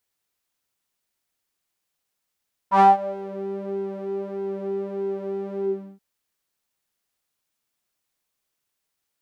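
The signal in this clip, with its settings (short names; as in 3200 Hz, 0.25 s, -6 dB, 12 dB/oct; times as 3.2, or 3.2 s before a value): synth patch with pulse-width modulation G3, oscillator 2 saw, detune 9 cents, oscillator 2 level -10.5 dB, sub -27.5 dB, filter bandpass, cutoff 250 Hz, Q 8.6, filter envelope 2 oct, filter decay 0.63 s, attack 89 ms, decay 0.17 s, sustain -20 dB, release 0.36 s, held 2.92 s, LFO 1.6 Hz, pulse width 49%, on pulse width 16%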